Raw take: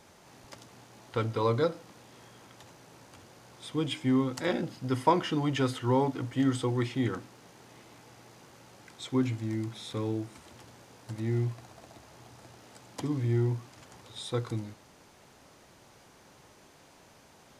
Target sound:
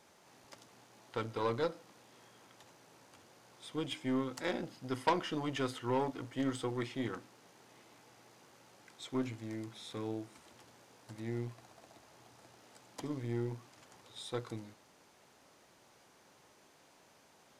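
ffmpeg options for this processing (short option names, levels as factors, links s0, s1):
-af "aeval=exprs='0.316*(cos(1*acos(clip(val(0)/0.316,-1,1)))-cos(1*PI/2))+0.1*(cos(4*acos(clip(val(0)/0.316,-1,1)))-cos(4*PI/2))+0.0794*(cos(6*acos(clip(val(0)/0.316,-1,1)))-cos(6*PI/2))':c=same,lowshelf=f=130:g=-12,volume=0.501"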